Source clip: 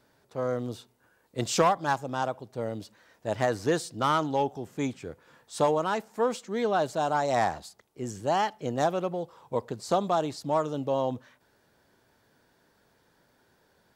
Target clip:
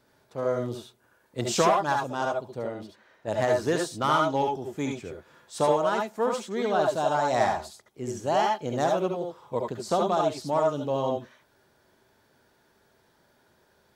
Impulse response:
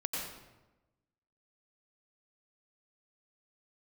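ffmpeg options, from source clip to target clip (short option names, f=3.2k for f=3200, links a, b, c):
-filter_complex "[0:a]asettb=1/sr,asplit=3[a][b][c];[a]atrim=end=2.594[d];[b]atrim=start=2.59:end=3.28,asetpts=PTS-STARTPTS,afade=t=in:d=0.004:c=qsin,afade=t=out:st=0.686:d=0.004:c=qsin,bass=f=250:g=-4,treble=f=4k:g=-10[e];[c]atrim=start=3.276[f];[d][e]acrossfade=d=0.004:c1=hsin:c2=qsin[g];[g][f]acrossfade=d=0.004:c1=qsin:c2=hsin[h];[1:a]atrim=start_sample=2205,afade=t=out:st=0.16:d=0.01,atrim=end_sample=7497,asetrate=57330,aresample=44100[i];[h][i]afir=irnorm=-1:irlink=0,volume=3dB"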